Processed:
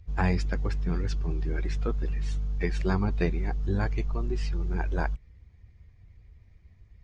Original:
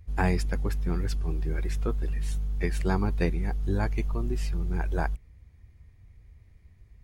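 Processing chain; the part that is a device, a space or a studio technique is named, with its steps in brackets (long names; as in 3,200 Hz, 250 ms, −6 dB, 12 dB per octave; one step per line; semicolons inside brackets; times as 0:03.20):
clip after many re-uploads (low-pass filter 6,400 Hz 24 dB per octave; spectral magnitudes quantised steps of 15 dB)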